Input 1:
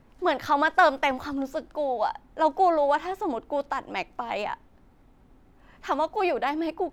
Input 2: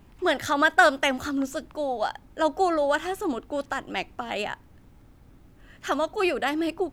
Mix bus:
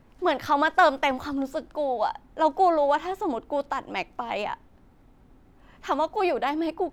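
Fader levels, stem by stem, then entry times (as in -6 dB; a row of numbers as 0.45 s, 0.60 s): +0.5 dB, -19.0 dB; 0.00 s, 0.00 s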